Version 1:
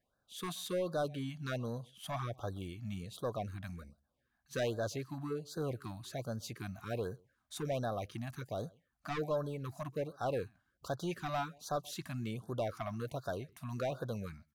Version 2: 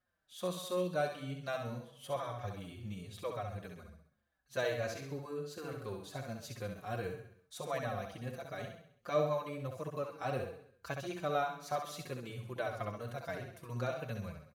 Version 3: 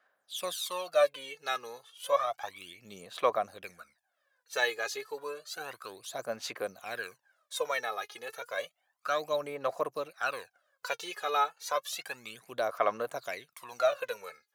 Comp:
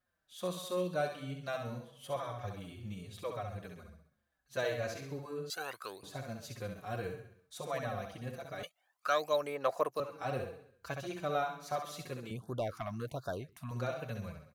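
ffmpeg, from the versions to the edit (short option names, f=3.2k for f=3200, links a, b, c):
-filter_complex "[2:a]asplit=2[a][b];[1:a]asplit=4[c][d][e][f];[c]atrim=end=5.502[g];[a]atrim=start=5.498:end=6.032[h];[d]atrim=start=6.028:end=8.632[i];[b]atrim=start=8.628:end=10.002[j];[e]atrim=start=9.998:end=12.312[k];[0:a]atrim=start=12.308:end=13.712[l];[f]atrim=start=13.708[m];[g][h]acrossfade=d=0.004:c1=hsin:c2=hsin[n];[n][i]acrossfade=d=0.004:c1=hsin:c2=hsin[o];[o][j]acrossfade=d=0.004:c1=hsin:c2=hsin[p];[p][k]acrossfade=d=0.004:c1=hsin:c2=hsin[q];[q][l]acrossfade=d=0.004:c1=hsin:c2=hsin[r];[r][m]acrossfade=d=0.004:c1=hsin:c2=hsin"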